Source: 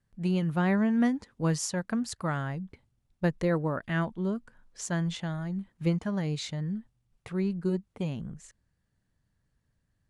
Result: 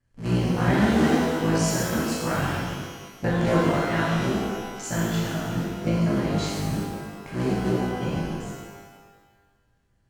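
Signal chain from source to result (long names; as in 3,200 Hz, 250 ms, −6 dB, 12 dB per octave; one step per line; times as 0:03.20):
sub-harmonics by changed cycles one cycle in 3, muted
low-pass filter 9,400 Hz 12 dB per octave
notch filter 3,700 Hz, Q 8.3
reverb with rising layers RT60 1.4 s, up +12 semitones, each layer −8 dB, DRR −7 dB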